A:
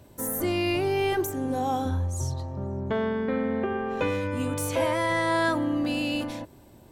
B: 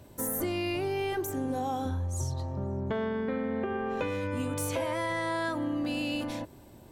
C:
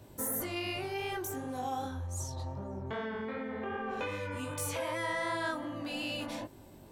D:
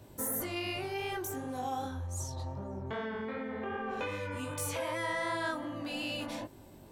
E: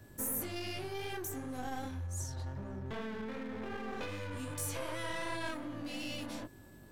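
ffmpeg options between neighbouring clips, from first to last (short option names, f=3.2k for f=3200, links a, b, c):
-af "acompressor=threshold=-28dB:ratio=6"
-filter_complex "[0:a]flanger=delay=18.5:depth=4.4:speed=2.6,acrossover=split=730|3400[a][b][c];[a]alimiter=level_in=11.5dB:limit=-24dB:level=0:latency=1:release=169,volume=-11.5dB[d];[d][b][c]amix=inputs=3:normalize=0,volume=2dB"
-af anull
-filter_complex "[0:a]acrossover=split=370|4400[a][b][c];[b]aeval=exprs='max(val(0),0)':c=same[d];[a][d][c]amix=inputs=3:normalize=0,aeval=exprs='val(0)+0.000631*sin(2*PI*1700*n/s)':c=same,volume=-1dB"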